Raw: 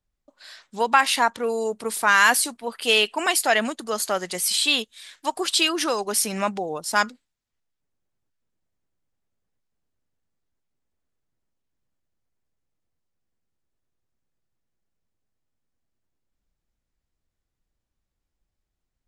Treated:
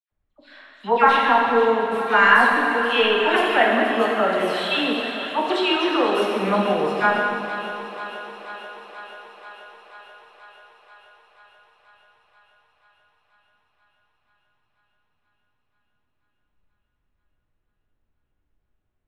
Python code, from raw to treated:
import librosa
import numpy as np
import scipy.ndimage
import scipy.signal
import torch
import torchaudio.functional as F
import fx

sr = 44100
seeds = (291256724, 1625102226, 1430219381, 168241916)

p1 = fx.notch(x, sr, hz=4800.0, q=5.5)
p2 = np.clip(p1, -10.0 ** (-13.0 / 20.0), 10.0 ** (-13.0 / 20.0))
p3 = p1 + (p2 * 10.0 ** (-4.0 / 20.0))
p4 = fx.air_absorb(p3, sr, metres=420.0)
p5 = fx.dispersion(p4, sr, late='lows', ms=113.0, hz=1900.0)
p6 = p5 + fx.echo_thinned(p5, sr, ms=484, feedback_pct=75, hz=280.0, wet_db=-12, dry=0)
p7 = fx.rev_plate(p6, sr, seeds[0], rt60_s=2.3, hf_ratio=0.95, predelay_ms=0, drr_db=-2.0)
y = p7 * 10.0 ** (-1.0 / 20.0)